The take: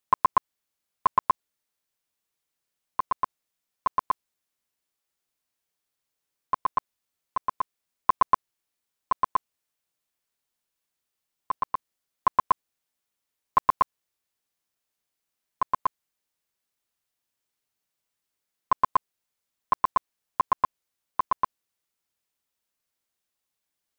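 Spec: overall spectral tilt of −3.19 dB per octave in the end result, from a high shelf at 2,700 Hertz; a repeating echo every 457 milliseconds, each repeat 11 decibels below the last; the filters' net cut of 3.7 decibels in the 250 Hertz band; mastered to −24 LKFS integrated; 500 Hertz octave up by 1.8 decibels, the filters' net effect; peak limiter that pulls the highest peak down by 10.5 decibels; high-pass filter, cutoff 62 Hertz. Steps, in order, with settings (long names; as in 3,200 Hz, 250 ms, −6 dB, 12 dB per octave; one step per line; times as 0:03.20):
high-pass filter 62 Hz
parametric band 250 Hz −6.5 dB
parametric band 500 Hz +4 dB
high-shelf EQ 2,700 Hz −5.5 dB
brickwall limiter −19.5 dBFS
repeating echo 457 ms, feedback 28%, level −11 dB
level +12.5 dB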